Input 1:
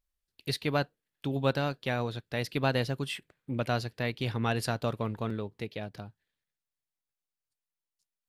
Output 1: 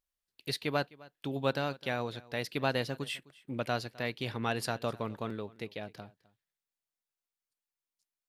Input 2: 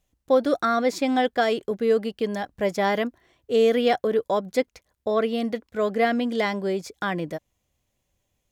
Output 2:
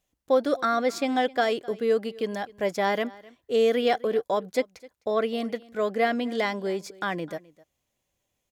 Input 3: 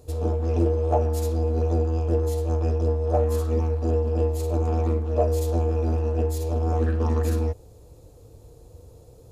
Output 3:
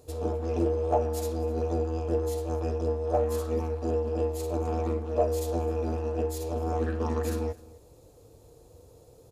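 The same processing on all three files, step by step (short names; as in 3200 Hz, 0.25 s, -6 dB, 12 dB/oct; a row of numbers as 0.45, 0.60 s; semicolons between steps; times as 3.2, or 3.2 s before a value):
low shelf 140 Hz -10 dB; on a send: echo 0.258 s -22 dB; on the sum: gain -1.5 dB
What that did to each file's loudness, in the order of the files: -3.0, -2.5, -5.0 LU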